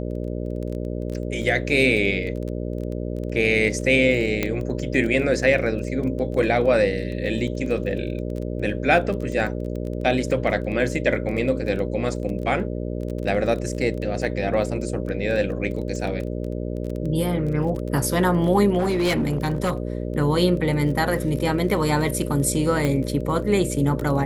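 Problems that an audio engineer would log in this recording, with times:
buzz 60 Hz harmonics 10 -28 dBFS
crackle 15 per s -29 dBFS
4.43 s: pop -8 dBFS
18.78–19.77 s: clipped -17.5 dBFS
22.85 s: pop -10 dBFS

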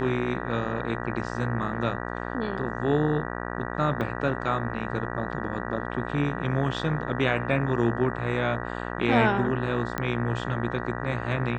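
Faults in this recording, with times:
buzz 60 Hz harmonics 32 -33 dBFS
4.01 s: dropout 2.6 ms
9.98 s: pop -14 dBFS

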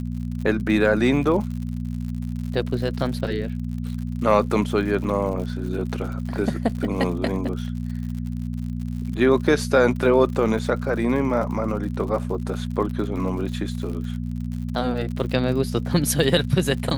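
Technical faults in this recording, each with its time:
crackle 84 per s -32 dBFS
hum 60 Hz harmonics 4 -28 dBFS
5.04 s: dropout 4.4 ms

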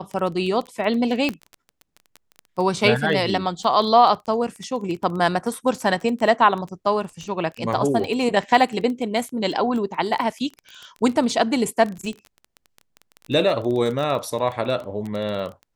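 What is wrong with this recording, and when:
crackle 16 per s -27 dBFS
1.29 s: pop -11 dBFS

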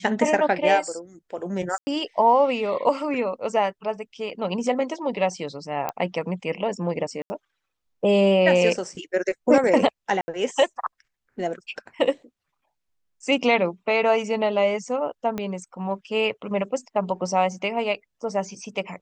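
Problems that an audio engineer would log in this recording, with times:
1.78–1.87 s: dropout 90 ms
5.89 s: pop -13 dBFS
7.22–7.30 s: dropout 80 ms
10.21–10.28 s: dropout 70 ms
15.38 s: pop -15 dBFS

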